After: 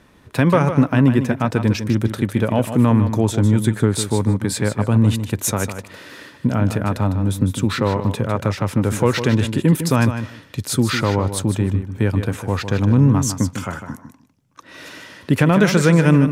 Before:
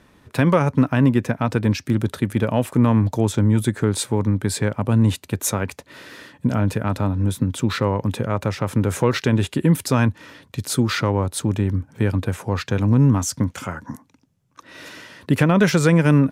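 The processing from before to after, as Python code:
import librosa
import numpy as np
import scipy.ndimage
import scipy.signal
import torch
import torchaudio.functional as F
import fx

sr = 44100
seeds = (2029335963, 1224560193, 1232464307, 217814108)

y = fx.echo_feedback(x, sr, ms=153, feedback_pct=16, wet_db=-9.5)
y = y * 10.0 ** (1.5 / 20.0)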